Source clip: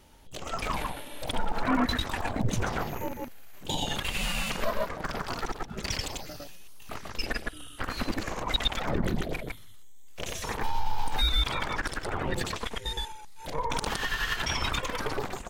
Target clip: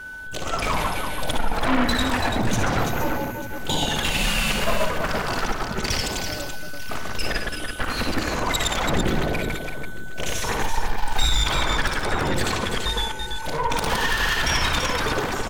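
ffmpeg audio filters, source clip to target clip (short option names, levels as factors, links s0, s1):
-af "aeval=exprs='val(0)+0.00708*sin(2*PI*1500*n/s)':c=same,aeval=exprs='0.224*sin(PI/2*2.51*val(0)/0.224)':c=same,aecho=1:1:58|71|335|892:0.376|0.282|0.501|0.15,volume=0.668"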